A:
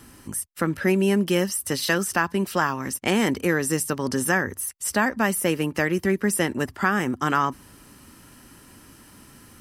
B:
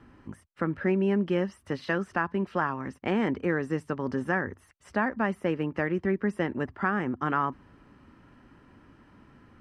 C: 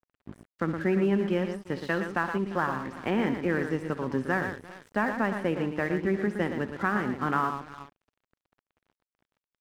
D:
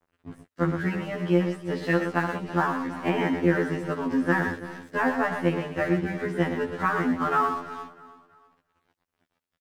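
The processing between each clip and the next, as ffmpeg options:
-af "lowpass=1.9k,volume=-4.5dB"
-filter_complex "[0:a]asplit=2[a][b];[b]aecho=0:1:67|117|348|398:0.211|0.422|0.126|0.133[c];[a][c]amix=inputs=2:normalize=0,aeval=exprs='sgn(val(0))*max(abs(val(0))-0.00473,0)':c=same"
-af "aecho=1:1:325|650|975:0.126|0.0466|0.0172,afftfilt=real='re*2*eq(mod(b,4),0)':imag='im*2*eq(mod(b,4),0)':win_size=2048:overlap=0.75,volume=5.5dB"

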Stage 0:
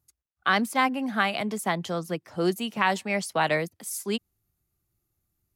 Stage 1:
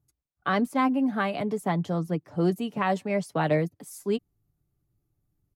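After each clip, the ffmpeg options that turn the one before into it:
-af "tiltshelf=f=970:g=8,aecho=1:1:6.9:0.42,volume=-3dB"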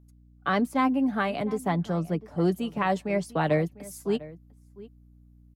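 -filter_complex "[0:a]aeval=exprs='val(0)+0.002*(sin(2*PI*60*n/s)+sin(2*PI*2*60*n/s)/2+sin(2*PI*3*60*n/s)/3+sin(2*PI*4*60*n/s)/4+sin(2*PI*5*60*n/s)/5)':c=same,asplit=2[a][b];[b]adelay=699.7,volume=-18dB,highshelf=f=4k:g=-15.7[c];[a][c]amix=inputs=2:normalize=0"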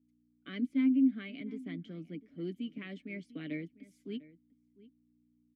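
-filter_complex "[0:a]asplit=3[a][b][c];[a]bandpass=f=270:t=q:w=8,volume=0dB[d];[b]bandpass=f=2.29k:t=q:w=8,volume=-6dB[e];[c]bandpass=f=3.01k:t=q:w=8,volume=-9dB[f];[d][e][f]amix=inputs=3:normalize=0"

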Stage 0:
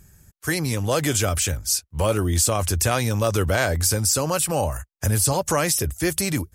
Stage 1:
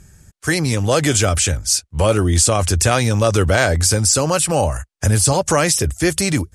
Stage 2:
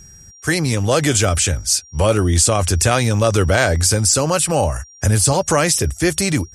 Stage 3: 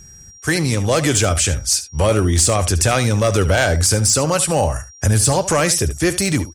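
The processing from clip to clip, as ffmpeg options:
-af "lowpass=f=10k:w=0.5412,lowpass=f=10k:w=1.3066,equalizer=f=1k:w=5.7:g=-2.5,volume=6dB"
-af "aeval=exprs='val(0)+0.00794*sin(2*PI*5700*n/s)':c=same"
-af "asoftclip=type=hard:threshold=-8dB,aecho=1:1:73:0.2"

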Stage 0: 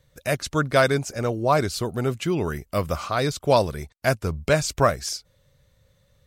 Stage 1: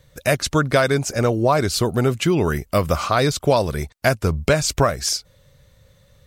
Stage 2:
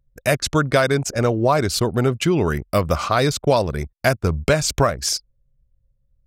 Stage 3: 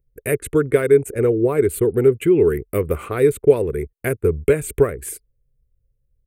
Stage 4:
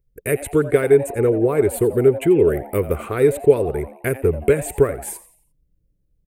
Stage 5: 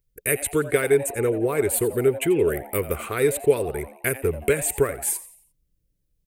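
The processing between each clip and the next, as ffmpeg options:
-af "acompressor=threshold=-21dB:ratio=6,volume=8dB"
-af "anlmdn=39.8"
-af "firequalizer=gain_entry='entry(110,0);entry(200,-4);entry(430,13);entry(610,-10);entry(920,-10);entry(2100,0);entry(5200,-30);entry(8500,3);entry(12000,5)':delay=0.05:min_phase=1,volume=-2.5dB"
-filter_complex "[0:a]asplit=5[a][b][c][d][e];[b]adelay=87,afreqshift=140,volume=-16dB[f];[c]adelay=174,afreqshift=280,volume=-23.5dB[g];[d]adelay=261,afreqshift=420,volume=-31.1dB[h];[e]adelay=348,afreqshift=560,volume=-38.6dB[i];[a][f][g][h][i]amix=inputs=5:normalize=0"
-af "tiltshelf=f=1.5k:g=-6.5"

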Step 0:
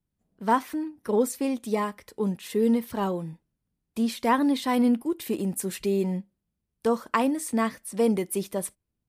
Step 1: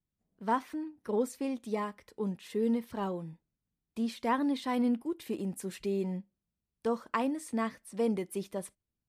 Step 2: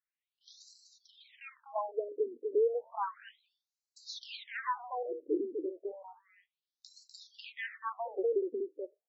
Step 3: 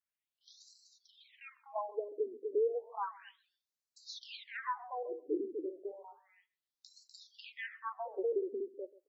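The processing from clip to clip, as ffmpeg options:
-af "highshelf=f=9.5k:g=-11.5,volume=-7dB"
-af "aecho=1:1:248:0.562,afftfilt=real='re*between(b*sr/1024,360*pow(5600/360,0.5+0.5*sin(2*PI*0.32*pts/sr))/1.41,360*pow(5600/360,0.5+0.5*sin(2*PI*0.32*pts/sr))*1.41)':imag='im*between(b*sr/1024,360*pow(5600/360,0.5+0.5*sin(2*PI*0.32*pts/sr))/1.41,360*pow(5600/360,0.5+0.5*sin(2*PI*0.32*pts/sr))*1.41)':win_size=1024:overlap=0.75,volume=5dB"
-filter_complex "[0:a]asplit=2[a][b];[b]adelay=135,lowpass=f=1.4k:p=1,volume=-18.5dB,asplit=2[c][d];[d]adelay=135,lowpass=f=1.4k:p=1,volume=0.22[e];[a][c][e]amix=inputs=3:normalize=0,volume=-3dB"

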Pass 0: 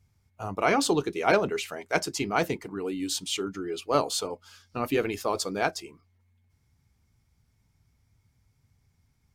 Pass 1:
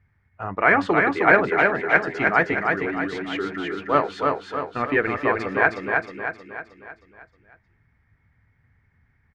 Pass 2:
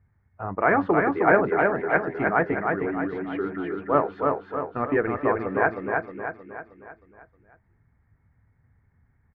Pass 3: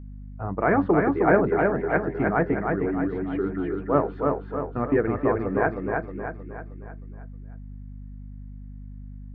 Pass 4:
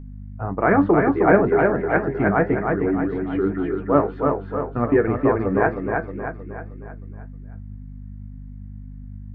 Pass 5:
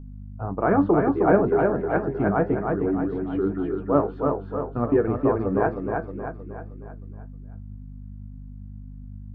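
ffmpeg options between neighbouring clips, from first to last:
-filter_complex "[0:a]lowpass=f=1.8k:t=q:w=5.9,asplit=2[a][b];[b]aecho=0:1:313|626|939|1252|1565|1878:0.668|0.327|0.16|0.0786|0.0385|0.0189[c];[a][c]amix=inputs=2:normalize=0,volume=2dB"
-af "lowpass=1.2k"
-af "lowshelf=f=500:g=10.5,aeval=exprs='val(0)+0.0224*(sin(2*PI*50*n/s)+sin(2*PI*2*50*n/s)/2+sin(2*PI*3*50*n/s)/3+sin(2*PI*4*50*n/s)/4+sin(2*PI*5*50*n/s)/5)':c=same,volume=-5dB"
-af "flanger=delay=7.3:depth=3.3:regen=69:speed=1.9:shape=sinusoidal,volume=8dB"
-af "equalizer=f=2k:w=2.3:g=-12.5,volume=-2.5dB"

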